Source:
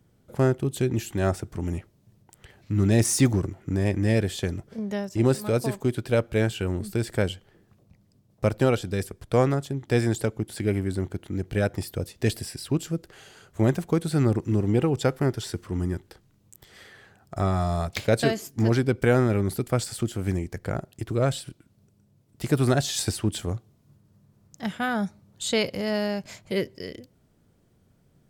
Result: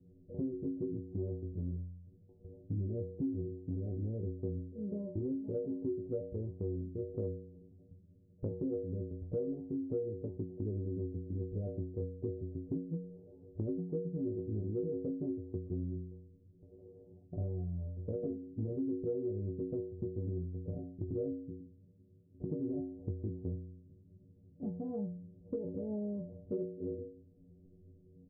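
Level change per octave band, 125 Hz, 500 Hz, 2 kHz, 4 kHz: -13.5 dB, -12.5 dB, under -40 dB, under -40 dB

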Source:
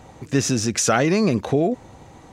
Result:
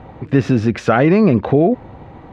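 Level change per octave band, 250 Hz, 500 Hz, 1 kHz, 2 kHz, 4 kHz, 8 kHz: +7.0 dB, +6.0 dB, +4.5 dB, +3.0 dB, -7.0 dB, under -15 dB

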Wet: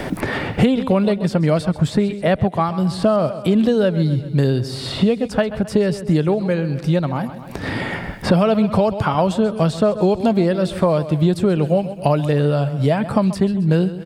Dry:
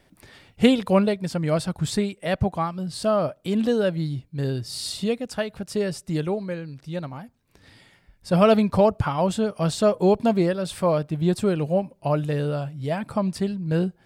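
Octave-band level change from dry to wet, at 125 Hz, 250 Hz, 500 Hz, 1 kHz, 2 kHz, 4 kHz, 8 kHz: +8.0, +6.5, +4.5, +4.5, +6.5, +3.0, -1.5 dB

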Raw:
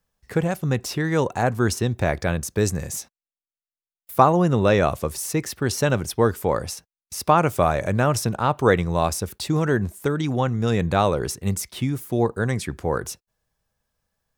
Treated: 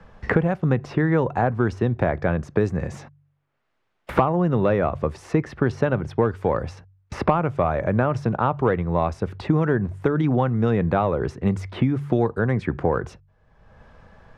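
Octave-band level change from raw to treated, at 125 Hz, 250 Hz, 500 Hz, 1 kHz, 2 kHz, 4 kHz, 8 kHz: +0.5 dB, +1.5 dB, -0.5 dB, -2.0 dB, -1.5 dB, -11.5 dB, under -20 dB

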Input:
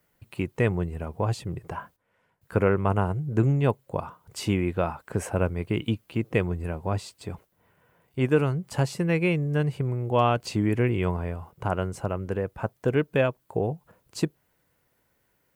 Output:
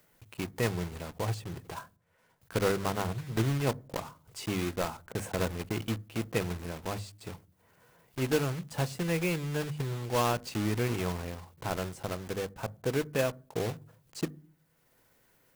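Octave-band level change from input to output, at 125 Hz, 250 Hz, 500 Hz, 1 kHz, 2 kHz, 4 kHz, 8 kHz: -7.5, -6.5, -6.0, -5.5, -4.0, +0.5, +2.0 dB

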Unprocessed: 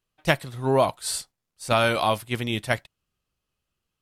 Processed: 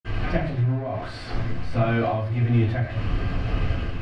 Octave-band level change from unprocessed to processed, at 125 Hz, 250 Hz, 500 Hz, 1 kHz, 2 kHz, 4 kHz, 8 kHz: +10.0 dB, +4.0 dB, -4.0 dB, -5.0 dB, -4.5 dB, -9.5 dB, under -20 dB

